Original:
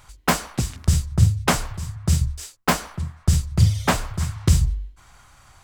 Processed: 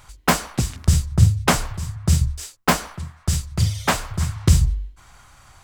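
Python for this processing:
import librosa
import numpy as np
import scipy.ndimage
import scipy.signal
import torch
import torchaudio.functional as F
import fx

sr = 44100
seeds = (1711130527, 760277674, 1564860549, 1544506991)

y = fx.low_shelf(x, sr, hz=490.0, db=-6.0, at=(2.94, 4.1))
y = F.gain(torch.from_numpy(y), 2.0).numpy()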